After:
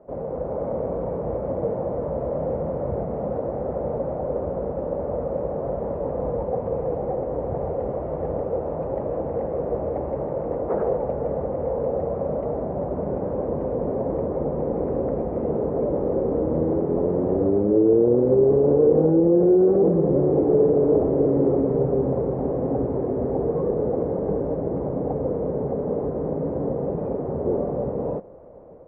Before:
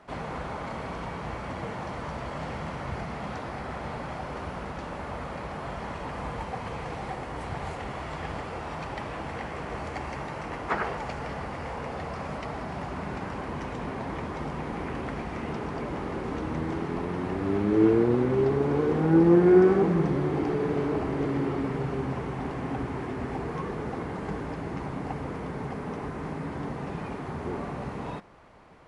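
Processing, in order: AGC gain up to 4.5 dB; limiter -15.5 dBFS, peak gain reduction 11.5 dB; synth low-pass 530 Hz, resonance Q 4.6

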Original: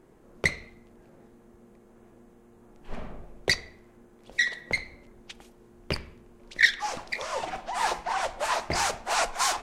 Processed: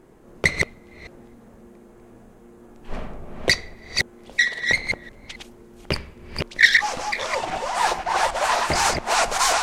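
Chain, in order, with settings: reverse delay 0.268 s, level -3 dB; gain +5.5 dB

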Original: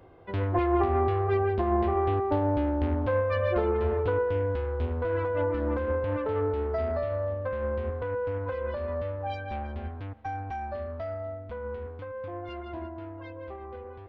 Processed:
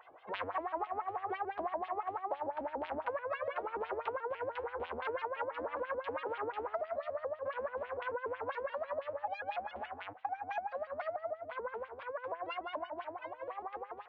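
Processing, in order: LFO band-pass sine 6 Hz 260–3400 Hz; resonant low shelf 500 Hz -13 dB, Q 1.5; compressor, threshold -44 dBFS, peak gain reduction 15.5 dB; shaped vibrato saw up 6.9 Hz, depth 160 cents; gain +9.5 dB

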